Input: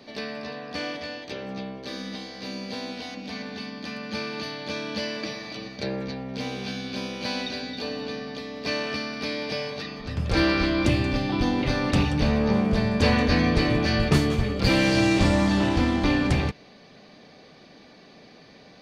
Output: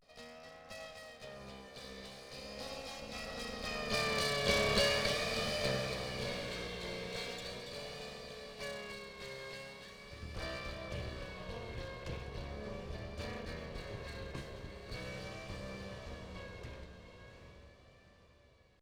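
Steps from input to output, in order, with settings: minimum comb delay 1.7 ms; Doppler pass-by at 4.53, 17 m/s, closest 8.6 m; on a send: diffused feedback echo 0.727 s, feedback 45%, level -6.5 dB; on the sum: vibrato 0.4 Hz 73 cents; gain +2.5 dB

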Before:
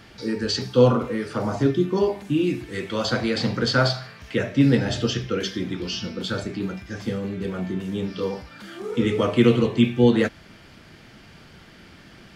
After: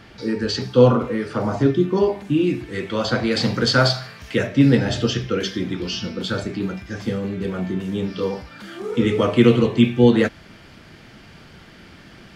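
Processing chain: high shelf 5100 Hz -7.5 dB, from 3.31 s +4.5 dB, from 4.47 s -2.5 dB; gain +3 dB

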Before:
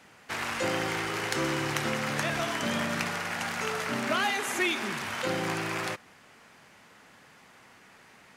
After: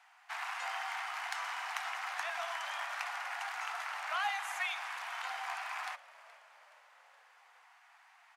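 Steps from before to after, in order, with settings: Chebyshev high-pass 710 Hz, order 6; high shelf 2300 Hz -10 dB; frequency-shifting echo 0.422 s, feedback 55%, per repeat -61 Hz, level -19.5 dB; gain -2.5 dB

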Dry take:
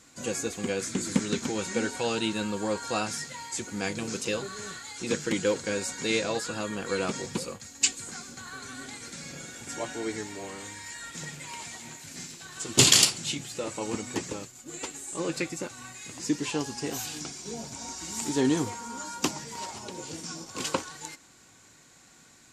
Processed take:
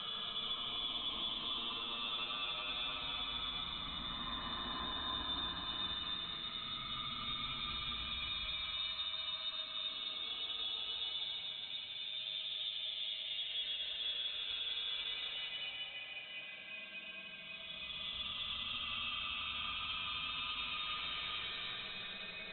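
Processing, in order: low shelf 87 Hz -7 dB; reverse; compressor 5:1, threshold -38 dBFS, peak gain reduction 22 dB; reverse; inverted band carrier 3900 Hz; Paulstretch 20×, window 0.10 s, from 2.01; limiter -32 dBFS, peak gain reduction 5.5 dB; air absorption 110 m; delay with a stepping band-pass 0.202 s, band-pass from 3000 Hz, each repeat -1.4 oct, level -3.5 dB; gain +1 dB

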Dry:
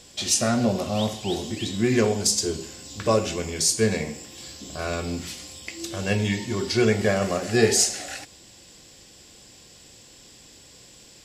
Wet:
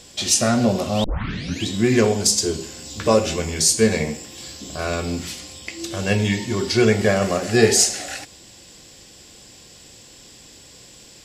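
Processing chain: 1.04 tape start 0.61 s; 2.75–4.17 doubler 13 ms -7 dB; 5.4–5.91 high shelf 8600 Hz -5.5 dB; gain +4 dB

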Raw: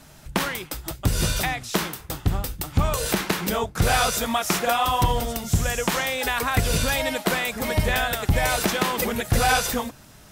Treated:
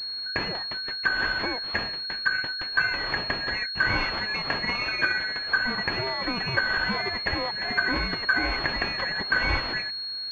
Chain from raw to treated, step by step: four-band scrambler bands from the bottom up 2143; pulse-width modulation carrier 4300 Hz; gain -2 dB

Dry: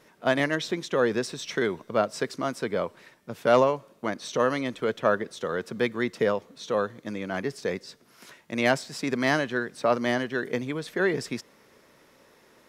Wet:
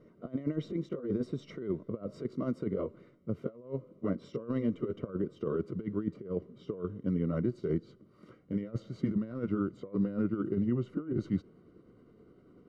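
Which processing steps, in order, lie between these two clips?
gliding pitch shift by -4 st starting unshifted; negative-ratio compressor -30 dBFS, ratio -0.5; running mean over 52 samples; gain +1.5 dB

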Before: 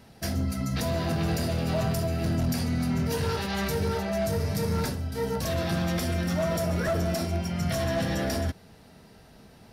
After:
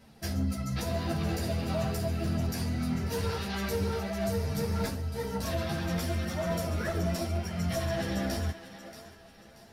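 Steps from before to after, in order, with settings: on a send: thinning echo 0.631 s, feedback 39%, high-pass 360 Hz, level -12 dB; on the sum: ensemble effect; gain -1 dB

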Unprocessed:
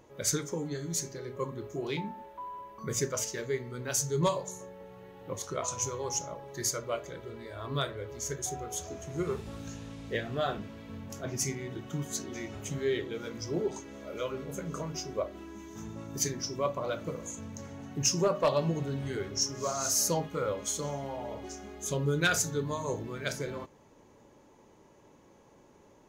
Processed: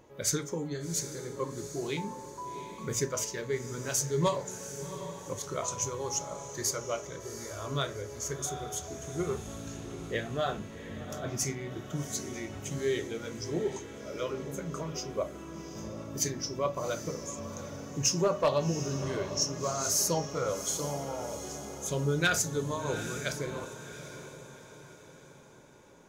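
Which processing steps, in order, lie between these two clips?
diffused feedback echo 0.756 s, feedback 45%, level -11 dB

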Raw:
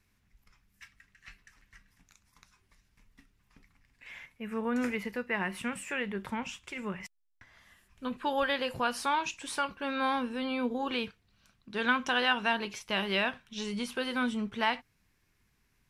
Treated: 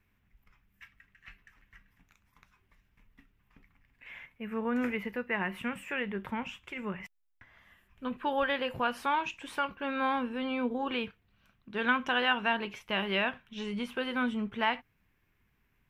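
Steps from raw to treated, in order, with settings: band shelf 6600 Hz -12 dB

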